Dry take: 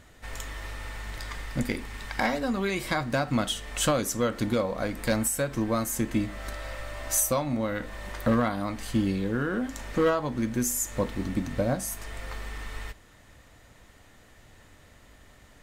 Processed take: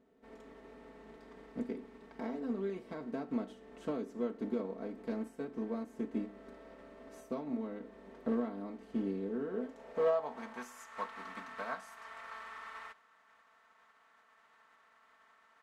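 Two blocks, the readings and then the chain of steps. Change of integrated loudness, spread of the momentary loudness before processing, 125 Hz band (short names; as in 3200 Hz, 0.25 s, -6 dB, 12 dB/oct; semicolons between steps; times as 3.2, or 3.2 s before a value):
-10.5 dB, 13 LU, -20.0 dB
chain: spectral contrast lowered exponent 0.68; comb 4.5 ms, depth 94%; band-pass sweep 340 Hz -> 1200 Hz, 9.39–10.84; gain -5.5 dB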